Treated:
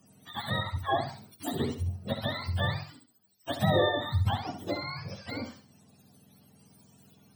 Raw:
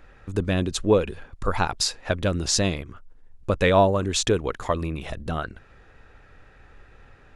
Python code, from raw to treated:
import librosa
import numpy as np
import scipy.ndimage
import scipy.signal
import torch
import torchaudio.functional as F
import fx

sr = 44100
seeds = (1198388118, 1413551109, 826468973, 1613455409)

y = fx.octave_mirror(x, sr, pivot_hz=590.0)
y = fx.high_shelf(y, sr, hz=4600.0, db=-9.0, at=(0.61, 1.01))
y = fx.echo_feedback(y, sr, ms=67, feedback_pct=28, wet_db=-8.5)
y = y * 10.0 ** (-6.5 / 20.0)